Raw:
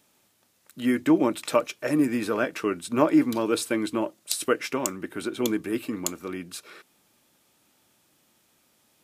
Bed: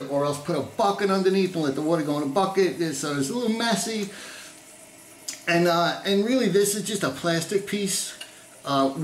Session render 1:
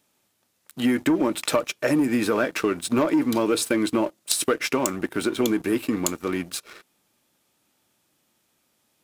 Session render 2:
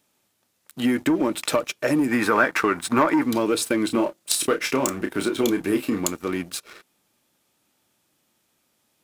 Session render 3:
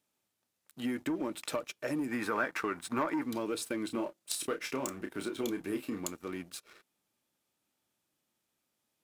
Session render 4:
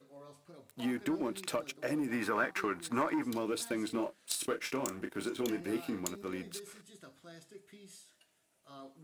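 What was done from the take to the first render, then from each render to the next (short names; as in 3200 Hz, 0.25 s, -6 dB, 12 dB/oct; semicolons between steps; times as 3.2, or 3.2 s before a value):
sample leveller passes 2; compressor 6:1, threshold -18 dBFS, peak gain reduction 8 dB
2.11–3.24 band shelf 1300 Hz +8.5 dB; 3.86–6 doubler 30 ms -7 dB
gain -13 dB
add bed -29 dB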